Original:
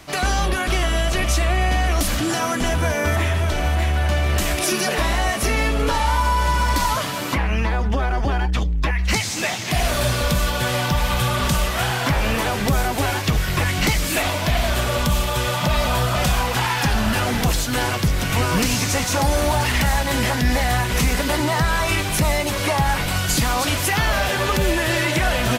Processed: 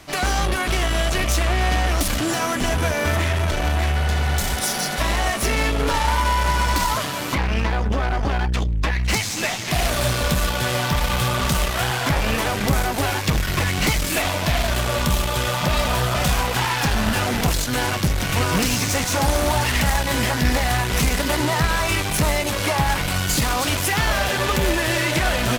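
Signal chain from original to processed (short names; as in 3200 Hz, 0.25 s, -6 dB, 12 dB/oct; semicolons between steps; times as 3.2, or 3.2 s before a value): added harmonics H 4 -13 dB, 6 -12 dB, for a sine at -8.5 dBFS; spectral repair 4.01–4.98, 210–3200 Hz before; gain -1 dB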